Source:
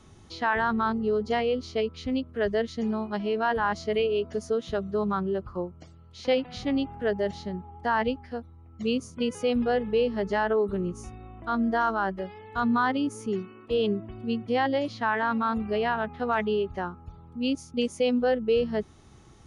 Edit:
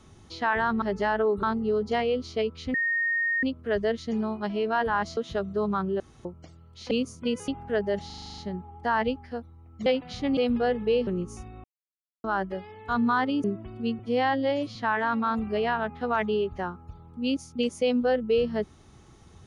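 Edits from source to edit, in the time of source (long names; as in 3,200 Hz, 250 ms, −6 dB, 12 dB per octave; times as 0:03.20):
0:02.13: insert tone 1,850 Hz −23 dBFS 0.69 s
0:03.87–0:04.55: remove
0:05.38–0:05.63: fill with room tone
0:06.29–0:06.80: swap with 0:08.86–0:09.43
0:07.38: stutter 0.04 s, 9 plays
0:10.13–0:10.74: move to 0:00.82
0:11.31–0:11.91: silence
0:13.11–0:13.88: remove
0:14.43–0:14.94: time-stretch 1.5×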